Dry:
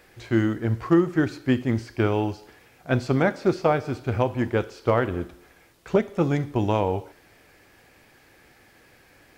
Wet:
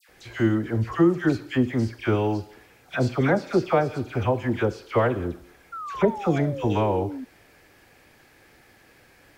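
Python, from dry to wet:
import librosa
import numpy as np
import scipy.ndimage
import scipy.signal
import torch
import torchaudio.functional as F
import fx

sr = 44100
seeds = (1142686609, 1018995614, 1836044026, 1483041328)

y = fx.spec_paint(x, sr, seeds[0], shape='fall', start_s=5.67, length_s=1.49, low_hz=250.0, high_hz=1400.0, level_db=-34.0)
y = fx.dispersion(y, sr, late='lows', ms=90.0, hz=1600.0)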